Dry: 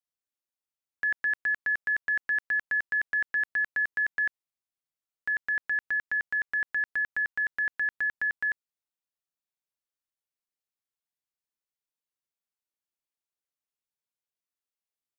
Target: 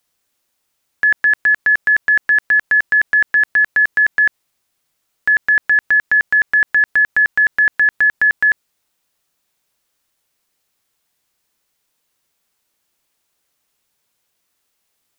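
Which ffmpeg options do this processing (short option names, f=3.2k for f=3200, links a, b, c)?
-af "alimiter=level_in=30.5dB:limit=-1dB:release=50:level=0:latency=1,volume=-7.5dB"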